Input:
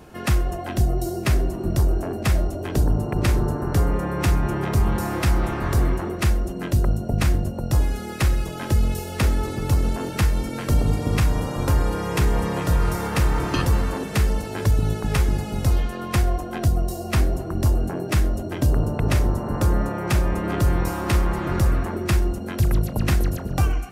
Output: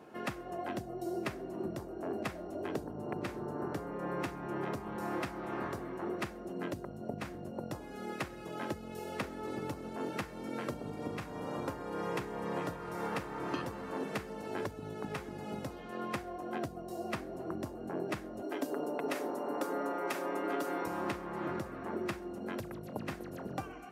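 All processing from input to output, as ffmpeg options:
-filter_complex "[0:a]asettb=1/sr,asplit=3[s0][s1][s2];[s0]atrim=end=18.424[s3];[s1]atrim=start=18.42:end=20.86,asetpts=PTS-STARTPTS,afade=t=in:d=0.004:c=qsin,afade=t=out:st=2.436:d=0.004:c=qsin,highpass=f=250:w=0.5412,highpass=f=250:w=1.3066,highshelf=f=7600:g=8,aecho=1:1:7.1:0.42,atrim=end_sample=107604[s4];[s2]atrim=start=20.856[s5];[s3][s4]acrossfade=d=0.004:c1=hsin:c2=qsin[s6];[s6][s5]acrossfade=d=0.004:c1=qsin:c2=hsin,acompressor=threshold=0.0708:ratio=6,highpass=240,highshelf=f=3200:g=-12,volume=0.531"

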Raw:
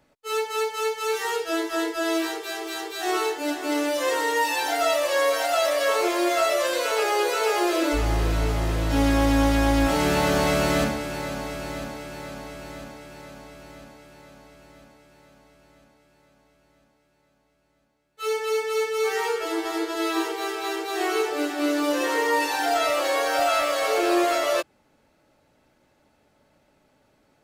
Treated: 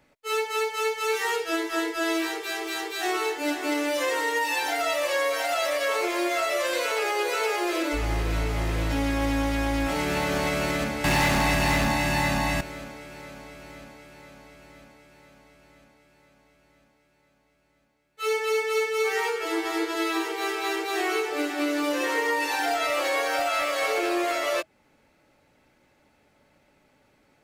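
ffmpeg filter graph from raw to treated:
-filter_complex "[0:a]asettb=1/sr,asplit=3[s0][s1][s2];[s0]atrim=end=11.044[s3];[s1]atrim=start=11.04:end=12.61,asetpts=PTS-STARTPTS,afade=t=in:d=0.004:c=qsin,afade=t=out:st=1.566:d=0.004:c=qsin,aecho=1:1:1.1:0.91,atrim=end_sample=69237,aeval=exprs='0.141*sin(PI/2*2.51*val(0)/0.141)':c=same[s4];[s2]atrim=start=12.606[s5];[s3][s4]acrossfade=d=0.004:c1=hsin:c2=qsin[s6];[s6][s5]acrossfade=d=0.004:c1=qsin:c2=hsin,bandreject=f=640:w=21,alimiter=limit=0.133:level=0:latency=1:release=258,equalizer=f=2200:w=2.4:g=5.5"

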